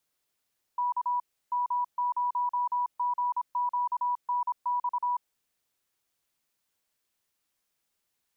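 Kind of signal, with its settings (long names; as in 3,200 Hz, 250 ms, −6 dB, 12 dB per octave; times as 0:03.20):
Morse code "K M0GQNX" 26 words per minute 979 Hz −25 dBFS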